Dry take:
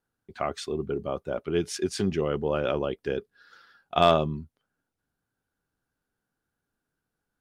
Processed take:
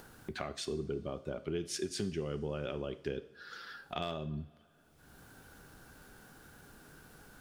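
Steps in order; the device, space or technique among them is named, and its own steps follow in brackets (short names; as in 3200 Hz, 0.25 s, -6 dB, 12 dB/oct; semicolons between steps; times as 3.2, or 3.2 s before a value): upward and downward compression (upward compressor, threshold -45 dBFS; compressor 4:1, threshold -41 dBFS, peak gain reduction 22 dB); dynamic EQ 900 Hz, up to -7 dB, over -56 dBFS, Q 0.71; two-slope reverb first 0.59 s, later 4 s, from -21 dB, DRR 10.5 dB; gain +6.5 dB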